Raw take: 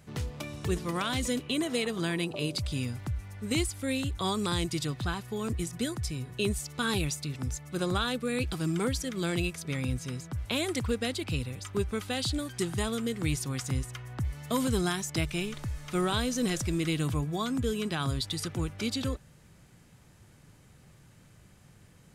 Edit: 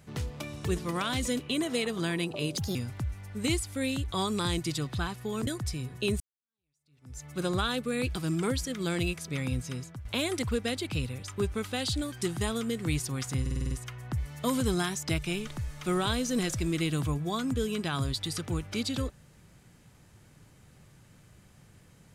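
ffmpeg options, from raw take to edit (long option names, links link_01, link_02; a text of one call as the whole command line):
ffmpeg -i in.wav -filter_complex "[0:a]asplit=12[link_01][link_02][link_03][link_04][link_05][link_06][link_07][link_08][link_09][link_10][link_11][link_12];[link_01]atrim=end=2.574[link_13];[link_02]atrim=start=2.57:end=2.82,asetpts=PTS-STARTPTS,asetrate=60858,aresample=44100,atrim=end_sample=7989,asetpts=PTS-STARTPTS[link_14];[link_03]atrim=start=2.816:end=5.542[link_15];[link_04]atrim=start=5.838:end=6.57,asetpts=PTS-STARTPTS,afade=type=out:start_time=0.728:duration=0.004:curve=hsin[link_16];[link_05]atrim=start=6.57:end=10.42,asetpts=PTS-STARTPTS,afade=type=in:duration=1.04:curve=exp,afade=type=out:start_time=3.5:duration=0.35:curve=qsin:silence=0.211349[link_17];[link_06]atrim=start=10.42:end=13.832,asetpts=PTS-STARTPTS,afade=type=in:duration=0.004:curve=hsin:silence=0.211349[link_18];[link_07]atrim=start=13.778:end=13.832[link_19];[link_08]atrim=start=13.778:end=13.832[link_20];[link_09]atrim=start=13.778:end=13.832[link_21];[link_10]atrim=start=13.778:end=13.832[link_22];[link_11]atrim=start=13.778:end=13.832[link_23];[link_12]atrim=start=13.778[link_24];[link_13][link_14]acrossfade=duration=0.004:curve1=hsin:curve2=hsin[link_25];[link_25][link_15]acrossfade=duration=0.004:curve1=hsin:curve2=hsin[link_26];[link_16][link_17][link_18]concat=n=3:v=0:a=1[link_27];[link_26][link_27]acrossfade=duration=0.004:curve1=hsin:curve2=hsin[link_28];[link_28][link_19]acrossfade=duration=0.004:curve1=hsin:curve2=hsin[link_29];[link_29][link_20]acrossfade=duration=0.004:curve1=hsin:curve2=hsin[link_30];[link_30][link_21]acrossfade=duration=0.004:curve1=hsin:curve2=hsin[link_31];[link_31][link_22]acrossfade=duration=0.004:curve1=hsin:curve2=hsin[link_32];[link_32][link_23]acrossfade=duration=0.004:curve1=hsin:curve2=hsin[link_33];[link_33][link_24]acrossfade=duration=0.004:curve1=hsin:curve2=hsin" out.wav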